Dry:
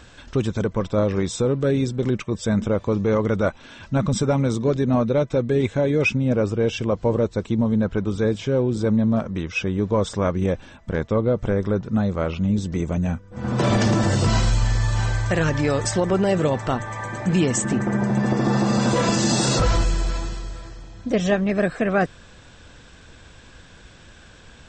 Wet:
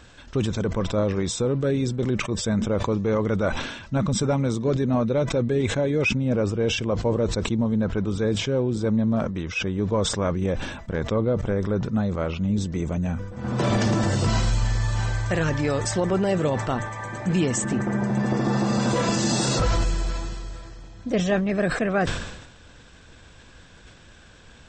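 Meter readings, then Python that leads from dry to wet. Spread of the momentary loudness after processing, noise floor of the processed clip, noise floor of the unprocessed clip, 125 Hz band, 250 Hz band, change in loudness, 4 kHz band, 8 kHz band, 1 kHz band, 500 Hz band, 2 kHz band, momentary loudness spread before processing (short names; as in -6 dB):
6 LU, -49 dBFS, -47 dBFS, -2.0 dB, -2.5 dB, -2.5 dB, 0.0 dB, -1.5 dB, -2.5 dB, -2.5 dB, -1.5 dB, 7 LU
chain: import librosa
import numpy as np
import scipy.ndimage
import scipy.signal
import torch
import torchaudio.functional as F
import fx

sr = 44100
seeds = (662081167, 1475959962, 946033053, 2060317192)

y = fx.sustainer(x, sr, db_per_s=57.0)
y = F.gain(torch.from_numpy(y), -3.0).numpy()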